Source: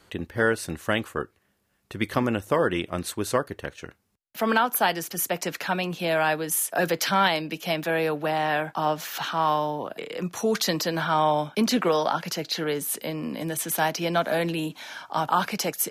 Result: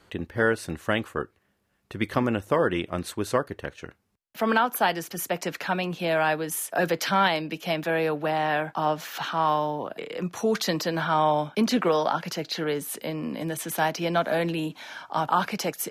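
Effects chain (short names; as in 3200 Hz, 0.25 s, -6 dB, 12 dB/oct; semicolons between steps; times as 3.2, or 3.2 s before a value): high shelf 4700 Hz -6.5 dB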